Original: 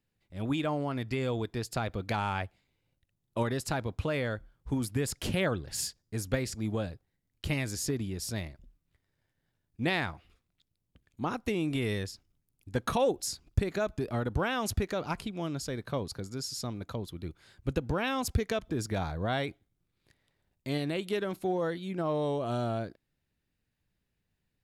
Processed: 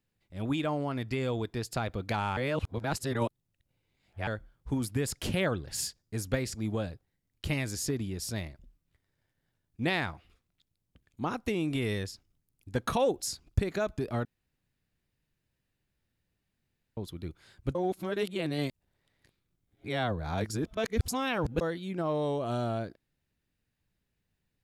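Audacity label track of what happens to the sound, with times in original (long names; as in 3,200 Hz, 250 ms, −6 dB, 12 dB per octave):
2.370000	4.270000	reverse
14.250000	16.970000	fill with room tone
17.750000	21.610000	reverse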